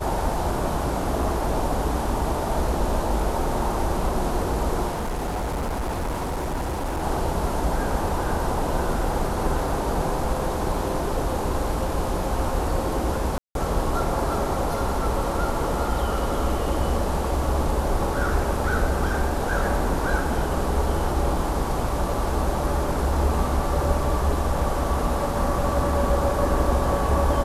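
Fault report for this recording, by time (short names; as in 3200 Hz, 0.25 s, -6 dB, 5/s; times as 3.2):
4.89–7.04 clipped -23.5 dBFS
13.38–13.55 gap 0.172 s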